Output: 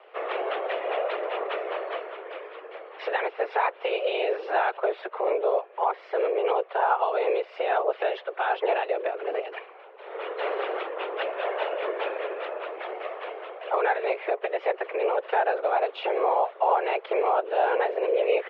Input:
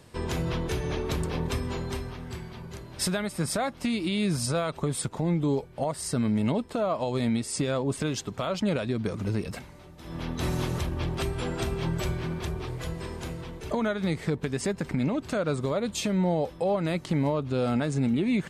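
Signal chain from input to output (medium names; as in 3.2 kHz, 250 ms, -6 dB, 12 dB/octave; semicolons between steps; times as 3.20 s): whisper effect; mistuned SSB +190 Hz 250–2800 Hz; trim +4.5 dB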